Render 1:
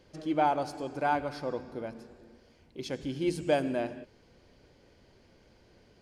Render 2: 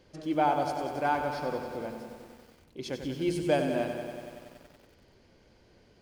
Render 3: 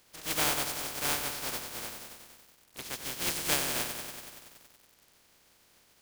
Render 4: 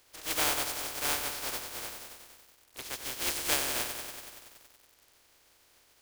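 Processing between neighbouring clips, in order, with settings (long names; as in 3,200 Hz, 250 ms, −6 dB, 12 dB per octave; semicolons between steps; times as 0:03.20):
feedback echo at a low word length 94 ms, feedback 80%, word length 9 bits, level −8.5 dB
compressing power law on the bin magnitudes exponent 0.2; level −3 dB
parametric band 180 Hz −13 dB 0.61 octaves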